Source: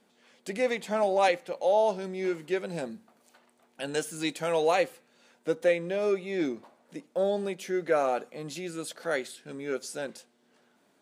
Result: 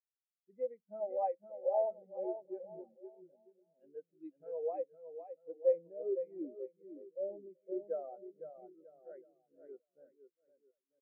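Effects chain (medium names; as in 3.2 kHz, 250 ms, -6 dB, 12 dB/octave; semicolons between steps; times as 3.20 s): distance through air 390 m; bouncing-ball echo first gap 510 ms, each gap 0.85×, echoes 5; spectral contrast expander 2.5:1; trim -7.5 dB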